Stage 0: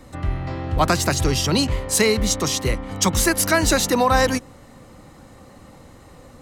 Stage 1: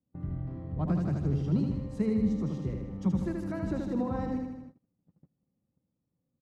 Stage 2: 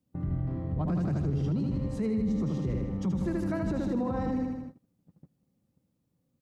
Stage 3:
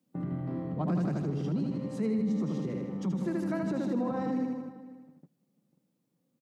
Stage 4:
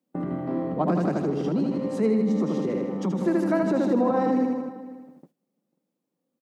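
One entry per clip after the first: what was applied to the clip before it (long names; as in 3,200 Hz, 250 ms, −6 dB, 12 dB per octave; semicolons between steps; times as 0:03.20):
resonant band-pass 170 Hz, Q 1.9; on a send: repeating echo 78 ms, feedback 59%, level −4 dB; on the sum: noise gate −43 dBFS, range −27 dB; level −3.5 dB
brickwall limiter −28.5 dBFS, peak gain reduction 11 dB; level +6 dB
high-pass filter 160 Hz 24 dB per octave; speech leveller within 4 dB 2 s; slap from a distant wall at 85 metres, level −17 dB
parametric band 560 Hz +6 dB 2.8 octaves; noise gate −57 dBFS, range −11 dB; parametric band 120 Hz −12 dB 1 octave; level +6 dB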